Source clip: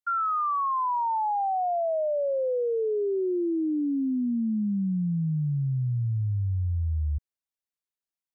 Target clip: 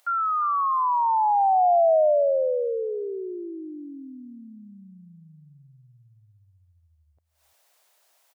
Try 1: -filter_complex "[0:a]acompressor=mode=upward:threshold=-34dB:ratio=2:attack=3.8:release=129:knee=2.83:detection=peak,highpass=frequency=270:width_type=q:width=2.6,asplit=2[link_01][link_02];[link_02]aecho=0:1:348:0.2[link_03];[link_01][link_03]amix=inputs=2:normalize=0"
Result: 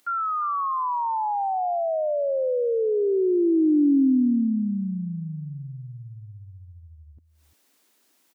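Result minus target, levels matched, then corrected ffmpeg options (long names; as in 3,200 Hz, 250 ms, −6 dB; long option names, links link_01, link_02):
250 Hz band +19.5 dB
-filter_complex "[0:a]acompressor=mode=upward:threshold=-34dB:ratio=2:attack=3.8:release=129:knee=2.83:detection=peak,highpass=frequency=640:width_type=q:width=2.6,asplit=2[link_01][link_02];[link_02]aecho=0:1:348:0.2[link_03];[link_01][link_03]amix=inputs=2:normalize=0"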